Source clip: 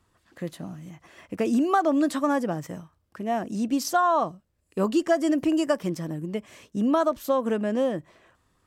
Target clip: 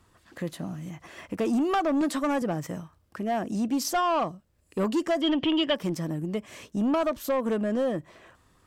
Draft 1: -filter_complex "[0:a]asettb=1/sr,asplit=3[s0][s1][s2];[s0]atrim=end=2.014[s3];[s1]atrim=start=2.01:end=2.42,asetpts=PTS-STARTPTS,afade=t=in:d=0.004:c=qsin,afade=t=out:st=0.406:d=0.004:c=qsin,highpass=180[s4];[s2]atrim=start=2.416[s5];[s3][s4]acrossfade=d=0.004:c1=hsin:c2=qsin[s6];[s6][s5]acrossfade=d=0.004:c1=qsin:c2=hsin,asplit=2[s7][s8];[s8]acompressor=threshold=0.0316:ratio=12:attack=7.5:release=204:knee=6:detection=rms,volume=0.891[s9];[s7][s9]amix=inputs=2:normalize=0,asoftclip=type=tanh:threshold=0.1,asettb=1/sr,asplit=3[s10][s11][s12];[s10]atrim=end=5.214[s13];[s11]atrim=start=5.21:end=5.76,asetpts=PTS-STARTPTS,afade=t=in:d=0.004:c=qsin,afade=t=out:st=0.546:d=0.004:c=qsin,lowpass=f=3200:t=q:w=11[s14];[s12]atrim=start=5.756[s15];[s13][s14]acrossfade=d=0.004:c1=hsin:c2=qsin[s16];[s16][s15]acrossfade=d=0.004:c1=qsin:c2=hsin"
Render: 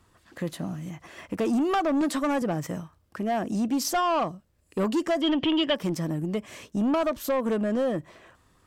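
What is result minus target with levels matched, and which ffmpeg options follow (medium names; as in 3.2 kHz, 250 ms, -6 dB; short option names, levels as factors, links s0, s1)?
compression: peak gain reduction -9 dB
-filter_complex "[0:a]asettb=1/sr,asplit=3[s0][s1][s2];[s0]atrim=end=2.014[s3];[s1]atrim=start=2.01:end=2.42,asetpts=PTS-STARTPTS,afade=t=in:d=0.004:c=qsin,afade=t=out:st=0.406:d=0.004:c=qsin,highpass=180[s4];[s2]atrim=start=2.416[s5];[s3][s4]acrossfade=d=0.004:c1=hsin:c2=qsin[s6];[s6][s5]acrossfade=d=0.004:c1=qsin:c2=hsin,asplit=2[s7][s8];[s8]acompressor=threshold=0.01:ratio=12:attack=7.5:release=204:knee=6:detection=rms,volume=0.891[s9];[s7][s9]amix=inputs=2:normalize=0,asoftclip=type=tanh:threshold=0.1,asettb=1/sr,asplit=3[s10][s11][s12];[s10]atrim=end=5.214[s13];[s11]atrim=start=5.21:end=5.76,asetpts=PTS-STARTPTS,afade=t=in:d=0.004:c=qsin,afade=t=out:st=0.546:d=0.004:c=qsin,lowpass=f=3200:t=q:w=11[s14];[s12]atrim=start=5.756[s15];[s13][s14]acrossfade=d=0.004:c1=hsin:c2=qsin[s16];[s16][s15]acrossfade=d=0.004:c1=qsin:c2=hsin"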